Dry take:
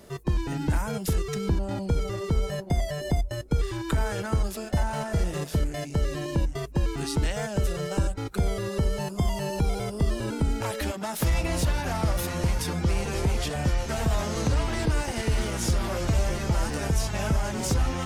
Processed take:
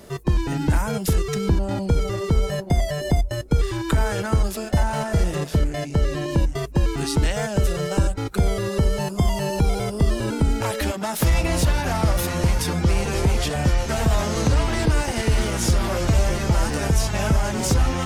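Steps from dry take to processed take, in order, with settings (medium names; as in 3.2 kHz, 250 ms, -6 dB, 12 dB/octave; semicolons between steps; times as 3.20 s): 5.35–6.31 s: treble shelf 6.9 kHz -6.5 dB; trim +5.5 dB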